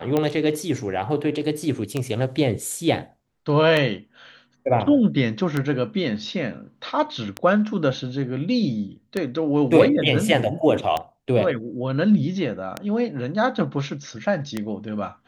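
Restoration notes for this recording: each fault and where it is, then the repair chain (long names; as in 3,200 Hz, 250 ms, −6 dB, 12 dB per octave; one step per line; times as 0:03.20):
scratch tick 33 1/3 rpm −10 dBFS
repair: click removal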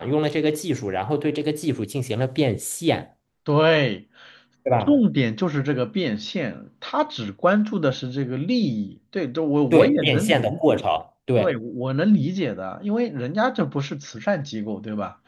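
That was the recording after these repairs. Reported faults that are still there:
none of them is left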